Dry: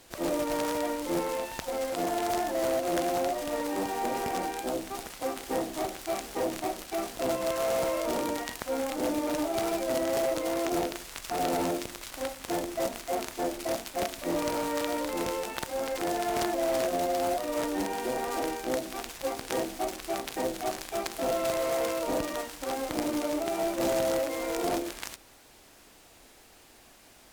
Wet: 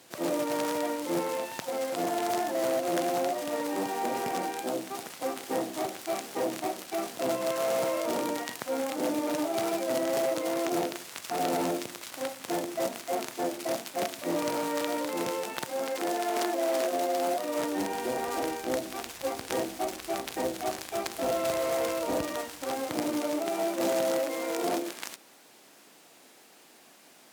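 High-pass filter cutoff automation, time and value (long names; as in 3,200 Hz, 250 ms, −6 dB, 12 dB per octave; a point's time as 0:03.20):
high-pass filter 24 dB per octave
0:15.59 120 Hz
0:16.24 240 Hz
0:17.07 240 Hz
0:18.10 58 Hz
0:22.34 58 Hz
0:23.61 160 Hz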